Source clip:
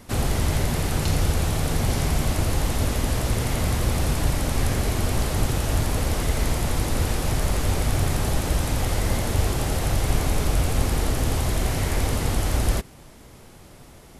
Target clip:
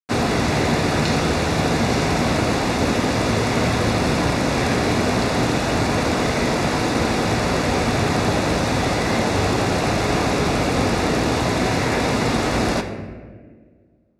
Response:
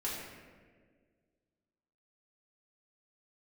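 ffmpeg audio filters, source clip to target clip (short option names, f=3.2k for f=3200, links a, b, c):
-filter_complex "[0:a]acrusher=bits=4:mix=0:aa=0.5,highpass=150,lowpass=4.8k,bandreject=f=3.1k:w=6.8,asplit=2[a][b];[1:a]atrim=start_sample=2205[c];[b][c]afir=irnorm=-1:irlink=0,volume=-6.5dB[d];[a][d]amix=inputs=2:normalize=0,volume=6dB"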